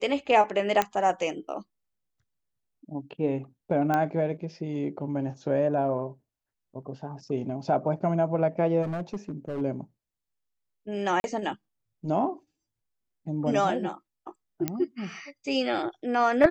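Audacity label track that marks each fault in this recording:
0.820000	0.820000	click −10 dBFS
3.940000	3.940000	click −14 dBFS
8.820000	9.620000	clipping −27.5 dBFS
11.200000	11.240000	drop-out 41 ms
14.680000	14.680000	click −12 dBFS

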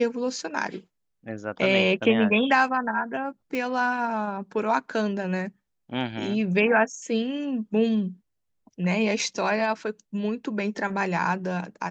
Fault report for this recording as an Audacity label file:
3.550000	3.550000	click −17 dBFS

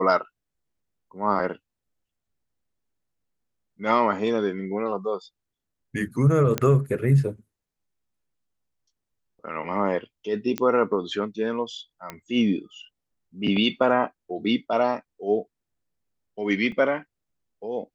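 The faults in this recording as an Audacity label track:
6.580000	6.580000	click −8 dBFS
10.580000	10.580000	click −12 dBFS
12.100000	12.100000	click −18 dBFS
16.720000	16.720000	drop-out 2.5 ms

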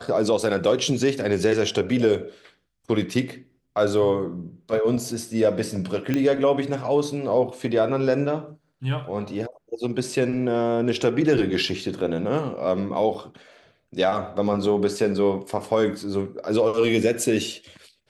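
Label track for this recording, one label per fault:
6.140000	6.140000	click −11 dBFS
13.140000	13.150000	drop-out 5.5 ms

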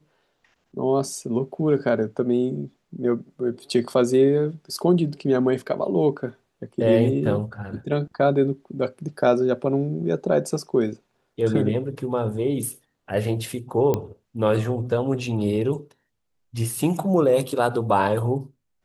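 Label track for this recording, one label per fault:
13.940000	13.940000	click −10 dBFS

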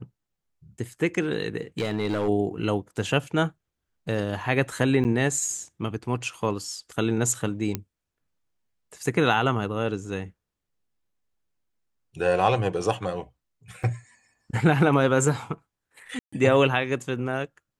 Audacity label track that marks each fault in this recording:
1.790000	2.290000	clipping −21 dBFS
5.040000	5.050000	drop-out 9 ms
7.750000	7.750000	click −12 dBFS
13.830000	13.840000	drop-out 5.8 ms
16.190000	16.320000	drop-out 135 ms

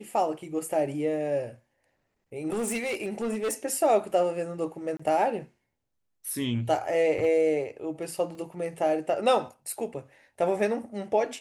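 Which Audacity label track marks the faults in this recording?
2.480000	3.540000	clipping −25 dBFS
4.970000	5.000000	drop-out 25 ms
8.350000	8.350000	drop-out 2.8 ms

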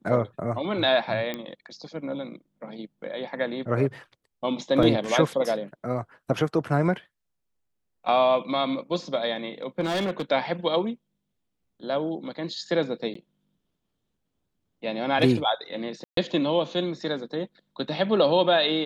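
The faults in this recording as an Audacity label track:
1.340000	1.340000	click −17 dBFS
4.830000	4.830000	drop-out 2.4 ms
9.800000	10.220000	clipping −22.5 dBFS
13.140000	13.150000	drop-out 14 ms
16.040000	16.170000	drop-out 133 ms

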